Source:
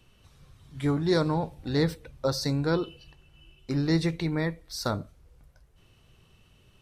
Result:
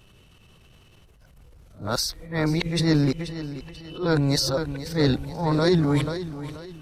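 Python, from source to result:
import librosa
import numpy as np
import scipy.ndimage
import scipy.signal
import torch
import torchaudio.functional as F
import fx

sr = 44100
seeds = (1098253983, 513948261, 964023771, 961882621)

y = np.flip(x).copy()
y = fx.echo_feedback(y, sr, ms=484, feedback_pct=38, wet_db=-13.5)
y = fx.transient(y, sr, attack_db=-11, sustain_db=6)
y = F.gain(torch.from_numpy(y), 5.5).numpy()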